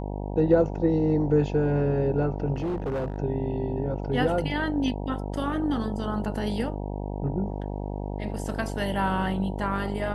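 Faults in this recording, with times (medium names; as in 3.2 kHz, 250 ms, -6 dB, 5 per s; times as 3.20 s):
buzz 50 Hz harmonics 19 -32 dBFS
2.54–3.18 s: clipped -25 dBFS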